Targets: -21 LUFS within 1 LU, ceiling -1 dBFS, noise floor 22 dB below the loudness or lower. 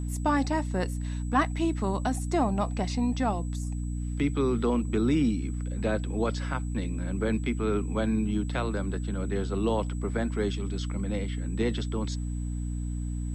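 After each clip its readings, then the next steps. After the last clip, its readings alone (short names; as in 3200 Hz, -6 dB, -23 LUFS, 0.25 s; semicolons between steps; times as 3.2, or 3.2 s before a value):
hum 60 Hz; harmonics up to 300 Hz; hum level -29 dBFS; steady tone 7900 Hz; tone level -51 dBFS; loudness -29.5 LUFS; peak -13.0 dBFS; loudness target -21.0 LUFS
-> notches 60/120/180/240/300 Hz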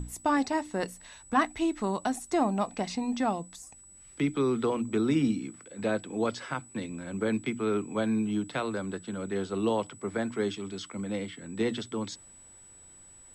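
hum none; steady tone 7900 Hz; tone level -51 dBFS
-> notch 7900 Hz, Q 30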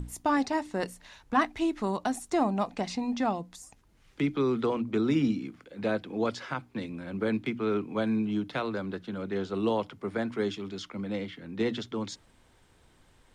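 steady tone none; loudness -31.0 LUFS; peak -13.5 dBFS; loudness target -21.0 LUFS
-> gain +10 dB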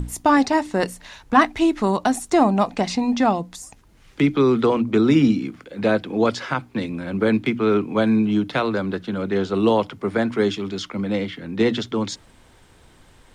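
loudness -21.0 LUFS; peak -3.5 dBFS; noise floor -52 dBFS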